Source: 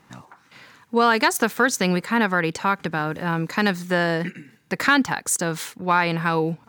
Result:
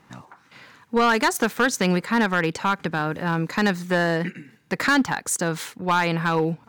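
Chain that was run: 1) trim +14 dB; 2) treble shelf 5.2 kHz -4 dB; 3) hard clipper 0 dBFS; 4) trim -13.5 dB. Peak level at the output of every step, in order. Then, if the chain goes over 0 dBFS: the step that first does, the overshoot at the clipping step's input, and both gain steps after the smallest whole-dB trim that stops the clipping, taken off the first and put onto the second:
+8.5 dBFS, +8.0 dBFS, 0.0 dBFS, -13.5 dBFS; step 1, 8.0 dB; step 1 +6 dB, step 4 -5.5 dB

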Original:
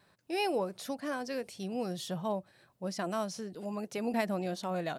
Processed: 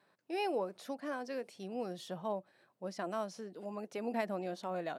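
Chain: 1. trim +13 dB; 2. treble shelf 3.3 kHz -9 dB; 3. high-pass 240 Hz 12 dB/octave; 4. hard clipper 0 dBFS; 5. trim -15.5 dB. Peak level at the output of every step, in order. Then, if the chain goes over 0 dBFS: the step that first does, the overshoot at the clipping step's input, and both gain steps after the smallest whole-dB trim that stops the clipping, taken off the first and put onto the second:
-6.0 dBFS, -8.0 dBFS, -4.5 dBFS, -4.5 dBFS, -20.0 dBFS; nothing clips

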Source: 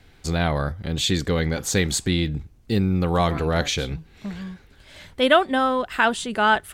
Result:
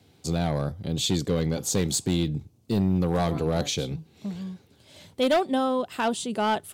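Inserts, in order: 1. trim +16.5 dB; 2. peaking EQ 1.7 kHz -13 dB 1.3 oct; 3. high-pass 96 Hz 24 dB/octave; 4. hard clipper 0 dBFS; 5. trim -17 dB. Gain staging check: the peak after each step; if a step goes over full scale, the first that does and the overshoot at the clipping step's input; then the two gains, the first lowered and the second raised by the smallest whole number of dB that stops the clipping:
+12.5 dBFS, +8.0 dBFS, +8.5 dBFS, 0.0 dBFS, -17.0 dBFS; step 1, 8.5 dB; step 1 +7.5 dB, step 5 -8 dB

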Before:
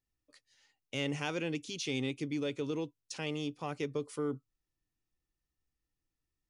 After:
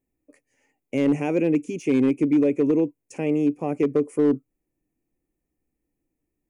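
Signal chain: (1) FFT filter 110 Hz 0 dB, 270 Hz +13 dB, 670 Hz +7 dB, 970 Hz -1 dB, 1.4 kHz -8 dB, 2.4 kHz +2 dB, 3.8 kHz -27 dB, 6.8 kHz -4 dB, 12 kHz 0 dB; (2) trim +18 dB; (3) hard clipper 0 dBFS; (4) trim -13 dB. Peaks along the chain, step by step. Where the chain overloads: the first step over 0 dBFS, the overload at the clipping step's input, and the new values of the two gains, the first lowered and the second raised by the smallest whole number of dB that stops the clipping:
-14.5 dBFS, +3.5 dBFS, 0.0 dBFS, -13.0 dBFS; step 2, 3.5 dB; step 2 +14 dB, step 4 -9 dB

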